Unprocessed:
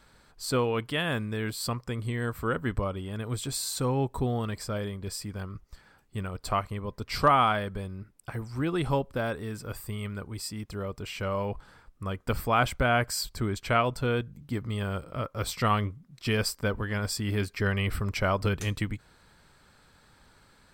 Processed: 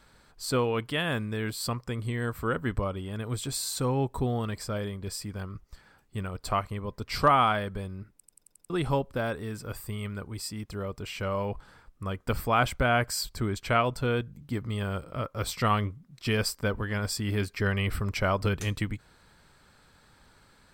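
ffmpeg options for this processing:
-filter_complex "[0:a]asplit=7[a][b][c][d][e][f][g];[a]atrim=end=8.252[h];[b]atrim=start=8.158:end=8.252[i];[c]atrim=start=8.158:end=8.252[j];[d]atrim=start=8.158:end=8.252[k];[e]atrim=start=8.158:end=8.252[l];[f]atrim=start=8.158:end=8.252[m];[g]atrim=start=8.698[n];[h][i]acrossfade=d=0.004:c1=hsin:c2=hsin[o];[o][j]acrossfade=d=0.004:c1=hsin:c2=hsin[p];[p][k]acrossfade=d=0.004:c1=hsin:c2=hsin[q];[q][l]acrossfade=d=0.004:c1=hsin:c2=hsin[r];[r][m]acrossfade=d=0.004:c1=hsin:c2=hsin[s];[s][n]acrossfade=d=0.004:c1=hsin:c2=hsin"

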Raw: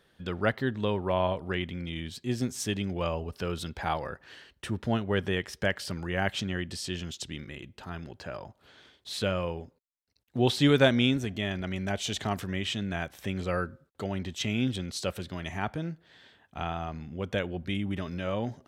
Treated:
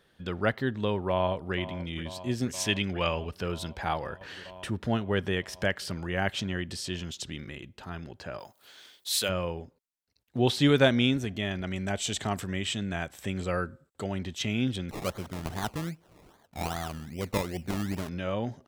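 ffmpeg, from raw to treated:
-filter_complex "[0:a]asplit=2[a][b];[b]afade=t=in:st=1.09:d=0.01,afade=t=out:st=1.55:d=0.01,aecho=0:1:480|960|1440|1920|2400|2880|3360|3840|4320|4800|5280|5760:0.188365|0.150692|0.120554|0.0964428|0.0771543|0.0617234|0.0493787|0.039503|0.0316024|0.0252819|0.0202255|0.0161804[c];[a][c]amix=inputs=2:normalize=0,asettb=1/sr,asplit=3[d][e][f];[d]atrim=end=2.524[g];[e]atrim=start=2.52:end=3.35,asetpts=PTS-STARTPTS,afade=t=in:d=0.004:c=qsin,afade=t=out:st=0.826:d=0.004:c=qsin,equalizer=f=2.5k:w=0.73:g=9[h];[f]atrim=start=3.346[i];[g][h]acrossfade=d=0.004:c1=hsin:c2=qsin[j];[j][i]acrossfade=d=0.004:c1=qsin:c2=hsin,asettb=1/sr,asplit=3[k][l][m];[k]atrim=end=4.214[n];[l]atrim=start=4.21:end=7.58,asetpts=PTS-STARTPTS,afade=t=in:d=0.004:c=qsin,afade=t=out:st=3.366:d=0.004:c=qsin,acompressor=mode=upward:threshold=-34dB:ratio=2.5:attack=3.2:release=140:knee=2.83:detection=peak[o];[m]atrim=start=7.576[p];[n][o]acrossfade=d=0.004:c1=hsin:c2=qsin[q];[q][p]acrossfade=d=0.004:c1=qsin:c2=hsin,asplit=3[r][s][t];[r]afade=t=out:st=8.38:d=0.02[u];[s]aemphasis=mode=production:type=riaa,afade=t=in:st=8.38:d=0.02,afade=t=out:st=9.28:d=0.02[v];[t]afade=t=in:st=9.28:d=0.02[w];[u][v][w]amix=inputs=3:normalize=0,asettb=1/sr,asplit=3[x][y][z];[x]atrim=end=11.664[aa];[y]atrim=start=11.66:end=14.25,asetpts=PTS-STARTPTS,afade=t=in:d=0.004:c=qsin,afade=t=out:st=2.586:d=0.004:c=qsin,equalizer=f=7.8k:t=o:w=0.22:g=10.5[ab];[z]atrim=start=14.246[ac];[aa][ab]acrossfade=d=0.004:c1=hsin:c2=qsin[ad];[ad][ac]acrossfade=d=0.004:c1=qsin:c2=hsin,asettb=1/sr,asplit=3[ae][af][ag];[ae]atrim=end=14.894[ah];[af]atrim=start=14.89:end=18.09,asetpts=PTS-STARTPTS,afade=t=in:d=0.004:c=qsin,afade=t=out:st=3.196:d=0.004:c=qsin,acrusher=samples=23:mix=1:aa=0.000001:lfo=1:lforange=13.8:lforate=2.5[ai];[ag]atrim=start=18.086[aj];[ah][ai]acrossfade=d=0.004:c1=hsin:c2=qsin[ak];[ak][aj]acrossfade=d=0.004:c1=qsin:c2=hsin"

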